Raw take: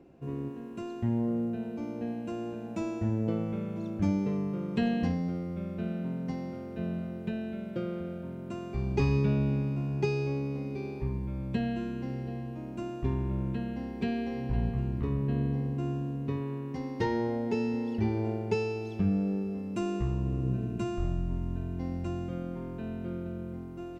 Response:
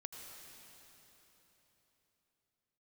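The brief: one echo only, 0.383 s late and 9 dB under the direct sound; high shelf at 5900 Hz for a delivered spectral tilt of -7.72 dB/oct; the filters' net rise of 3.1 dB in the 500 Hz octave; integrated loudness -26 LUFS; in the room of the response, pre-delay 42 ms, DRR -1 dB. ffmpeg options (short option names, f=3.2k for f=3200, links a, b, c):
-filter_complex "[0:a]equalizer=f=500:t=o:g=4,highshelf=f=5.9k:g=7.5,aecho=1:1:383:0.355,asplit=2[a][b];[1:a]atrim=start_sample=2205,adelay=42[c];[b][c]afir=irnorm=-1:irlink=0,volume=4.5dB[d];[a][d]amix=inputs=2:normalize=0,volume=1.5dB"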